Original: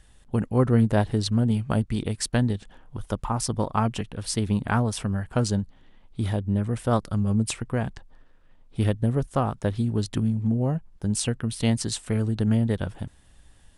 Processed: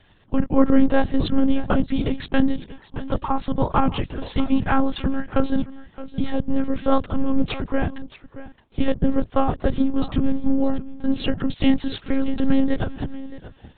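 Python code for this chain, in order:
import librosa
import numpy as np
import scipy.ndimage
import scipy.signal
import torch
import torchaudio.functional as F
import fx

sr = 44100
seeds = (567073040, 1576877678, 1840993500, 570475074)

y = fx.octave_divider(x, sr, octaves=1, level_db=-4.0)
y = scipy.signal.sosfilt(scipy.signal.butter(4, 89.0, 'highpass', fs=sr, output='sos'), y)
y = y + 10.0 ** (-15.5 / 20.0) * np.pad(y, (int(625 * sr / 1000.0), 0))[:len(y)]
y = fx.lpc_monotone(y, sr, seeds[0], pitch_hz=270.0, order=16)
y = y * librosa.db_to_amplitude(6.0)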